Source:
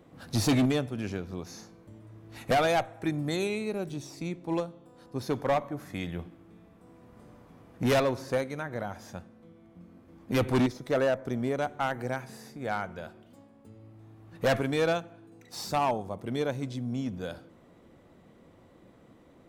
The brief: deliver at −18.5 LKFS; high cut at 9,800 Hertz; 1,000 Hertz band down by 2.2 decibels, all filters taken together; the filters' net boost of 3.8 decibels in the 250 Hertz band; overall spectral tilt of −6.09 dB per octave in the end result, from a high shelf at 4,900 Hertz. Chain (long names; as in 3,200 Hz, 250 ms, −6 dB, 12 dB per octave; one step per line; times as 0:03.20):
low-pass filter 9,800 Hz
parametric band 250 Hz +4.5 dB
parametric band 1,000 Hz −3.5 dB
high-shelf EQ 4,900 Hz −7 dB
level +11 dB